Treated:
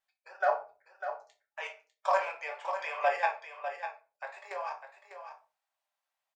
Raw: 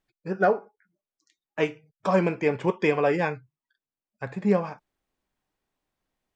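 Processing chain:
Butterworth high-pass 610 Hz 48 dB per octave
output level in coarse steps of 13 dB
pitch vibrato 2.8 Hz 20 cents
on a send: single-tap delay 599 ms −9.5 dB
on the sum: rectangular room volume 180 cubic metres, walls furnished, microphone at 1.2 metres

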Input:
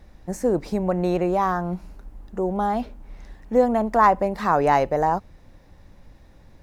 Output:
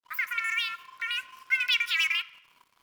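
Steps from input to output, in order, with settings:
turntable start at the beginning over 0.41 s
parametric band 590 Hz +8.5 dB 0.77 octaves
in parallel at +1 dB: downward compressor, threshold −27 dBFS, peak gain reduction 18.5 dB
on the sum: first-order pre-emphasis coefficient 0.8
frequency shifter +410 Hz
dead-zone distortion −52 dBFS
on a send at −16.5 dB: convolution reverb RT60 2.1 s, pre-delay 6 ms
on the sum: wrong playback speed 33 rpm record played at 78 rpm

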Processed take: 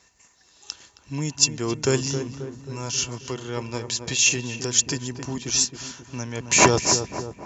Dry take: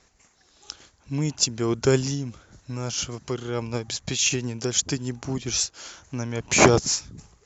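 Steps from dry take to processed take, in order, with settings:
high-pass filter 52 Hz
high-shelf EQ 3,700 Hz +8.5 dB
hollow resonant body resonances 980/1,800/2,700 Hz, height 13 dB, ringing for 90 ms
on a send: feedback echo with a low-pass in the loop 268 ms, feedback 57%, low-pass 1,400 Hz, level −8 dB
on the sum: level −2.5 dB

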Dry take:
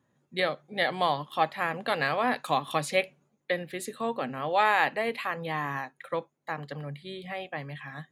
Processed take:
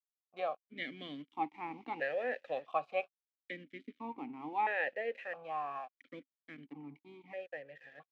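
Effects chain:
0:01.50–0:02.50: background noise white −43 dBFS
high-frequency loss of the air 230 metres
dead-zone distortion −47.5 dBFS
formant filter that steps through the vowels 1.5 Hz
level +3.5 dB

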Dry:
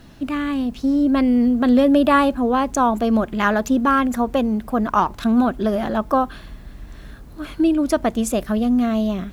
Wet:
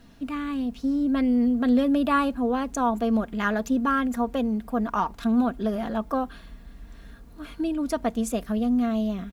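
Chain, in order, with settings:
comb filter 4.3 ms, depth 42%
level −8 dB

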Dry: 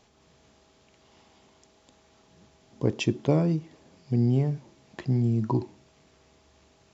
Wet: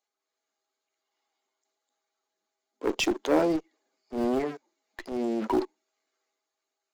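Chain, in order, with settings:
spectral dynamics exaggerated over time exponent 1.5
leveller curve on the samples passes 3
Butterworth high-pass 280 Hz 36 dB per octave
in parallel at −9 dB: comparator with hysteresis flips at −21 dBFS
on the sum: transient designer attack −8 dB, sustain +4 dB

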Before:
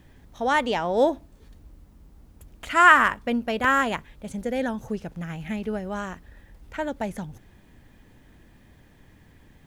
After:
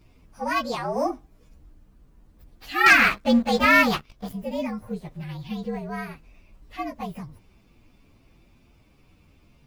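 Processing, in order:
partials spread apart or drawn together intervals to 116%
0:02.86–0:04.33: leveller curve on the samples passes 2

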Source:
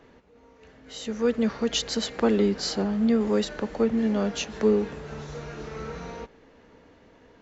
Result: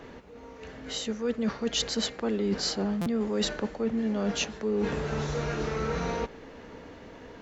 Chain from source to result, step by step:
reversed playback
downward compressor 10 to 1, threshold −34 dBFS, peak gain reduction 18 dB
reversed playback
buffer that repeats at 0:03.01, samples 256, times 8
level +8.5 dB

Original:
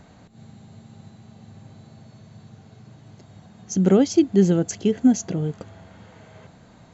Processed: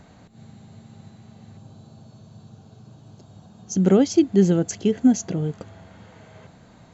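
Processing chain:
0:01.57–0:03.76: parametric band 2,000 Hz −14 dB 0.48 octaves

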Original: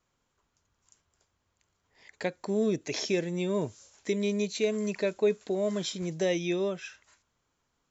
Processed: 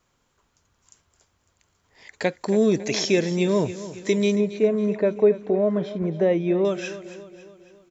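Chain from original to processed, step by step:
0:04.35–0:06.65: low-pass filter 1,300 Hz 12 dB per octave
repeating echo 276 ms, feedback 52%, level −14.5 dB
level +8 dB

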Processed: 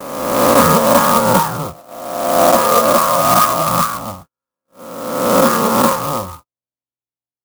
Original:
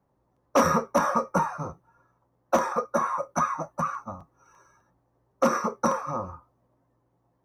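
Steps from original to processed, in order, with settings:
peak hold with a rise ahead of every peak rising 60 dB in 1.38 s
noise gate −44 dBFS, range −44 dB
0:01.65–0:03.69: hollow resonant body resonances 680/1,200 Hz, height 7 dB
boost into a limiter +8.5 dB
converter with an unsteady clock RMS 0.062 ms

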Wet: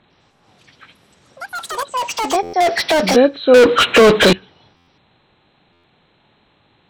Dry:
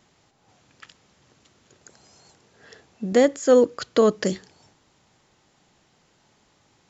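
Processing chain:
hearing-aid frequency compression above 1,300 Hz 1.5 to 1
0:03.54–0:04.33: mid-hump overdrive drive 35 dB, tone 3,600 Hz, clips at −7.5 dBFS
delay with pitch and tempo change per echo 100 ms, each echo +6 semitones, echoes 3, each echo −6 dB
buffer that repeats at 0:02.42/0:04.76/0:05.72, samples 512, times 9
level +5.5 dB

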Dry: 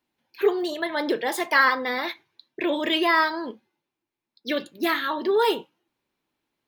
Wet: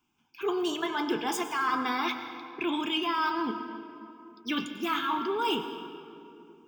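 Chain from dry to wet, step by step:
phaser with its sweep stopped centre 2,800 Hz, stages 8
reversed playback
downward compressor, threshold −34 dBFS, peak gain reduction 15.5 dB
reversed playback
convolution reverb RT60 2.8 s, pre-delay 92 ms, DRR 8.5 dB
level +7 dB

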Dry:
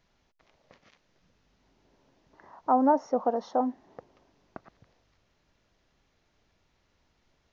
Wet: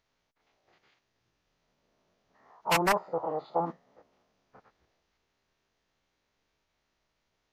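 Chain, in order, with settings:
spectrum averaged block by block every 50 ms
low-shelf EQ 330 Hz −7 dB
wrap-around overflow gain 17.5 dB
phase-vocoder pitch shift with formants kept −7 semitones
dynamic equaliser 1,200 Hz, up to +7 dB, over −42 dBFS, Q 0.92
level −2.5 dB

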